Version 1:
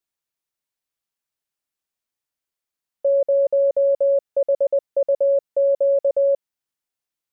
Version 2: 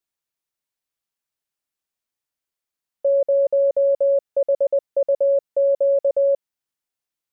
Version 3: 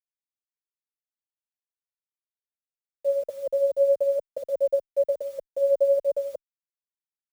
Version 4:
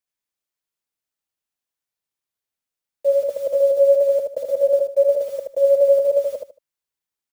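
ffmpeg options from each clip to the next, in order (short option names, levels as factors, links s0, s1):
-af anull
-filter_complex "[0:a]tremolo=f=11:d=0.57,acrusher=bits=7:mix=0:aa=0.000001,asplit=2[s0][s1];[s1]adelay=6.6,afreqshift=1[s2];[s0][s2]amix=inputs=2:normalize=1"
-af "aecho=1:1:76|152|228:0.631|0.145|0.0334,volume=2.11"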